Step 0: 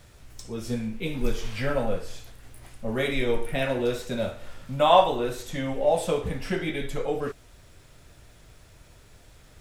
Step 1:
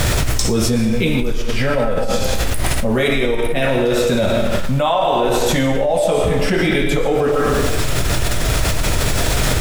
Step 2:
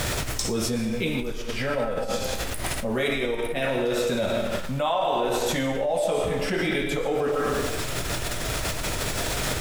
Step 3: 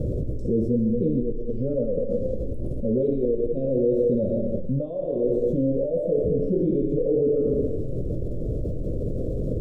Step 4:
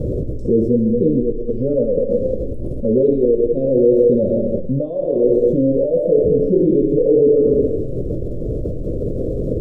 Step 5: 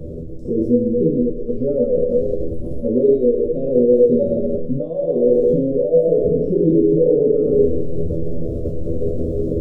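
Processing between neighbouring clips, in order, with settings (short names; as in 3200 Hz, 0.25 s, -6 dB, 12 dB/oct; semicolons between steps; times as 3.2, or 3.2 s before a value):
bit-crush 11-bit; digital reverb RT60 0.85 s, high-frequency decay 0.95×, pre-delay 75 ms, DRR 5.5 dB; fast leveller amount 100%; gain -2.5 dB
low shelf 150 Hz -8 dB; gain -7.5 dB
elliptic low-pass 530 Hz, stop band 40 dB; gain +5 dB
dynamic EQ 400 Hz, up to +6 dB, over -35 dBFS, Q 1; gain +3.5 dB
resonator 82 Hz, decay 0.37 s, harmonics all, mix 90%; AGC gain up to 9 dB; pre-echo 34 ms -20.5 dB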